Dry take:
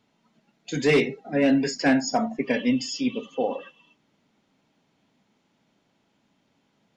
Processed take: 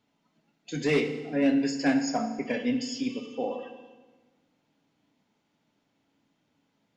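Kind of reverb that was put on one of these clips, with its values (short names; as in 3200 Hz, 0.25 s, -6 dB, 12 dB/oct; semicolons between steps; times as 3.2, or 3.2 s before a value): FDN reverb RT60 1.3 s, low-frequency decay 1.25×, high-frequency decay 0.9×, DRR 6.5 dB; gain -6 dB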